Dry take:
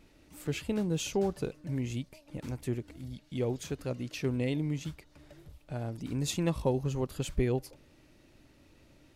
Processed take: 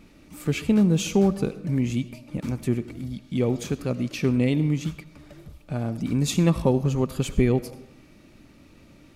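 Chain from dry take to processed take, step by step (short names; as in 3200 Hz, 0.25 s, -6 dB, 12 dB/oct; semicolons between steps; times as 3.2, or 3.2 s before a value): small resonant body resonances 200/1200/2300 Hz, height 8 dB, ringing for 30 ms; on a send: reverb RT60 0.70 s, pre-delay 45 ms, DRR 14.5 dB; on the sum: gain +6 dB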